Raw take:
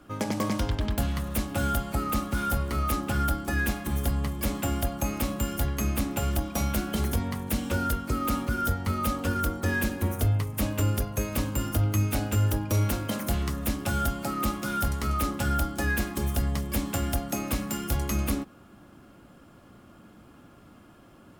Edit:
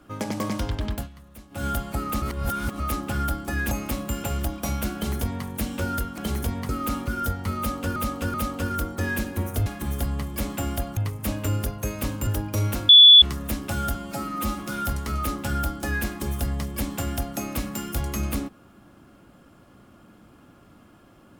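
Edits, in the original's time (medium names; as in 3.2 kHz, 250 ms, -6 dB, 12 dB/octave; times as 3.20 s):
0.92–1.67 s: dip -17 dB, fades 0.17 s
2.22–2.80 s: reverse
3.71–5.02 s: move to 10.31 s
5.55–6.16 s: delete
6.87–7.38 s: copy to 8.10 s
8.99–9.37 s: loop, 3 plays
11.61–12.44 s: delete
13.06–13.39 s: bleep 3.44 kHz -6.5 dBFS
14.12–14.55 s: stretch 1.5×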